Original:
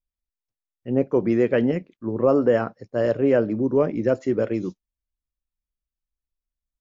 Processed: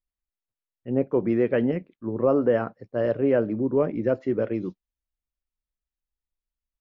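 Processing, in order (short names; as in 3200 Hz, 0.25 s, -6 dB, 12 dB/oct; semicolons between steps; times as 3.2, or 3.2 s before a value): Bessel low-pass 3100 Hz, order 4; gain -2.5 dB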